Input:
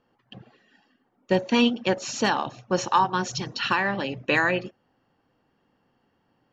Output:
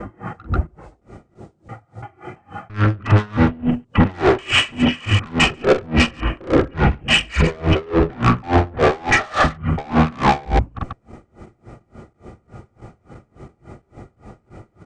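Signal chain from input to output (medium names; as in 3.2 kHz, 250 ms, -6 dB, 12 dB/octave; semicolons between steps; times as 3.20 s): slices played last to first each 148 ms, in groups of 4; in parallel at +1.5 dB: compressor with a negative ratio -25 dBFS, ratio -0.5; on the sum: valve stage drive 24 dB, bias 0.2; wide varispeed 0.439×; on a send: loudspeakers at several distances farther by 15 m -11 dB, 48 m -11 dB; on the sum: loudness maximiser +28.5 dB; logarithmic tremolo 3.5 Hz, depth 28 dB; trim -4.5 dB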